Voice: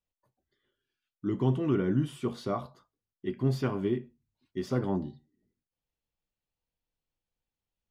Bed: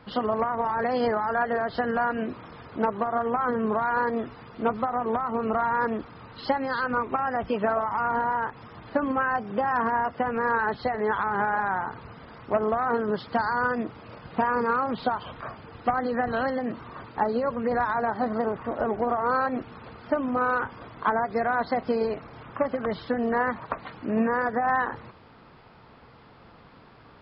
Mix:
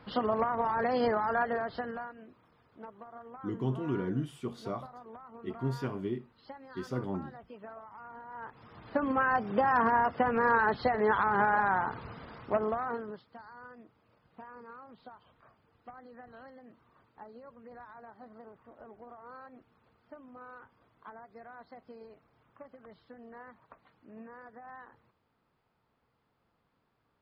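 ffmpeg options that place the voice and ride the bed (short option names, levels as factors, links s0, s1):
-filter_complex "[0:a]adelay=2200,volume=0.531[s0];[1:a]volume=7.5,afade=t=out:st=1.34:d=0.8:silence=0.11885,afade=t=in:st=8.28:d=1.14:silence=0.0891251,afade=t=out:st=12.14:d=1.11:silence=0.0668344[s1];[s0][s1]amix=inputs=2:normalize=0"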